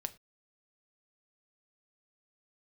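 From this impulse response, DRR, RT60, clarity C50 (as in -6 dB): 9.0 dB, no single decay rate, 19.5 dB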